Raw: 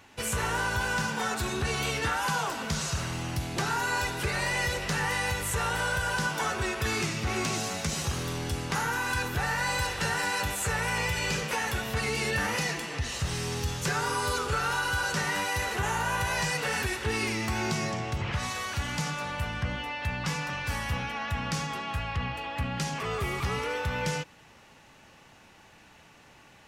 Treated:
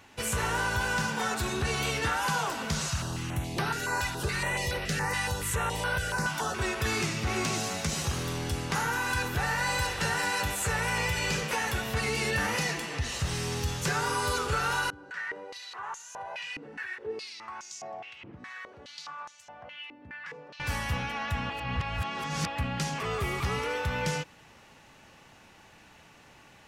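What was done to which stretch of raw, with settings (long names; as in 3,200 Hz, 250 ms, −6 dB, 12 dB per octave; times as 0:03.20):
0:02.88–0:06.59: notch on a step sequencer 7.1 Hz 440–7,200 Hz
0:14.90–0:20.60: band-pass on a step sequencer 4.8 Hz 290–6,600 Hz
0:21.50–0:22.47: reverse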